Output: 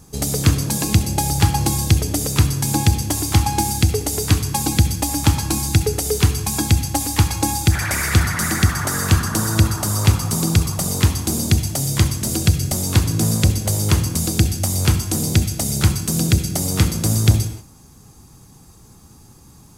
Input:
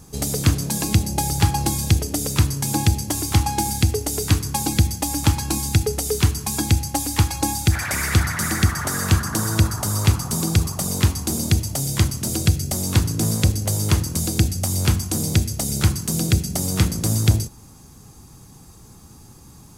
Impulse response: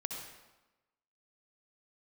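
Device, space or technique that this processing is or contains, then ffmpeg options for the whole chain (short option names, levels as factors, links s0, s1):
keyed gated reverb: -filter_complex "[0:a]asplit=3[s0][s1][s2];[1:a]atrim=start_sample=2205[s3];[s1][s3]afir=irnorm=-1:irlink=0[s4];[s2]apad=whole_len=872283[s5];[s4][s5]sidechaingate=range=0.0224:threshold=0.01:ratio=16:detection=peak,volume=0.531[s6];[s0][s6]amix=inputs=2:normalize=0,volume=0.891"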